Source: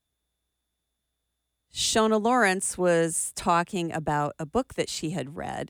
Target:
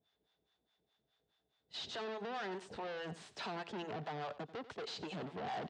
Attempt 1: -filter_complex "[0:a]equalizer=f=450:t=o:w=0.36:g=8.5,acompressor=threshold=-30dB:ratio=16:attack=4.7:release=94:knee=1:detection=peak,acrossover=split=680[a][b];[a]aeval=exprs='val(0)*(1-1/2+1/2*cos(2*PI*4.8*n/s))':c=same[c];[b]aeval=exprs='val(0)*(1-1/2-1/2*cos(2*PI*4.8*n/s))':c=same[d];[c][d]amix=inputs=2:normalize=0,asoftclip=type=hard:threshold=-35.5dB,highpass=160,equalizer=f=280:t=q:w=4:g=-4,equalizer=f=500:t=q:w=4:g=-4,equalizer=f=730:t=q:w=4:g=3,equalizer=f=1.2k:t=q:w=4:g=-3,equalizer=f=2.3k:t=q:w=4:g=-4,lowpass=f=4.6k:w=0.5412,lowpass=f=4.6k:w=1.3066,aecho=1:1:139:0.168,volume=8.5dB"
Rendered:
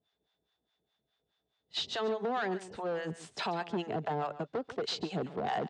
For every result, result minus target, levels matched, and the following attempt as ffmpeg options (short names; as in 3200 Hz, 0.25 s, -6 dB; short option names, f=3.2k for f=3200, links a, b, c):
echo 49 ms late; hard clip: distortion -8 dB
-filter_complex "[0:a]equalizer=f=450:t=o:w=0.36:g=8.5,acompressor=threshold=-30dB:ratio=16:attack=4.7:release=94:knee=1:detection=peak,acrossover=split=680[a][b];[a]aeval=exprs='val(0)*(1-1/2+1/2*cos(2*PI*4.8*n/s))':c=same[c];[b]aeval=exprs='val(0)*(1-1/2-1/2*cos(2*PI*4.8*n/s))':c=same[d];[c][d]amix=inputs=2:normalize=0,asoftclip=type=hard:threshold=-35.5dB,highpass=160,equalizer=f=280:t=q:w=4:g=-4,equalizer=f=500:t=q:w=4:g=-4,equalizer=f=730:t=q:w=4:g=3,equalizer=f=1.2k:t=q:w=4:g=-3,equalizer=f=2.3k:t=q:w=4:g=-4,lowpass=f=4.6k:w=0.5412,lowpass=f=4.6k:w=1.3066,aecho=1:1:90:0.168,volume=8.5dB"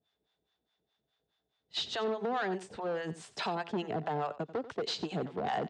hard clip: distortion -8 dB
-filter_complex "[0:a]equalizer=f=450:t=o:w=0.36:g=8.5,acompressor=threshold=-30dB:ratio=16:attack=4.7:release=94:knee=1:detection=peak,acrossover=split=680[a][b];[a]aeval=exprs='val(0)*(1-1/2+1/2*cos(2*PI*4.8*n/s))':c=same[c];[b]aeval=exprs='val(0)*(1-1/2-1/2*cos(2*PI*4.8*n/s))':c=same[d];[c][d]amix=inputs=2:normalize=0,asoftclip=type=hard:threshold=-47.5dB,highpass=160,equalizer=f=280:t=q:w=4:g=-4,equalizer=f=500:t=q:w=4:g=-4,equalizer=f=730:t=q:w=4:g=3,equalizer=f=1.2k:t=q:w=4:g=-3,equalizer=f=2.3k:t=q:w=4:g=-4,lowpass=f=4.6k:w=0.5412,lowpass=f=4.6k:w=1.3066,aecho=1:1:90:0.168,volume=8.5dB"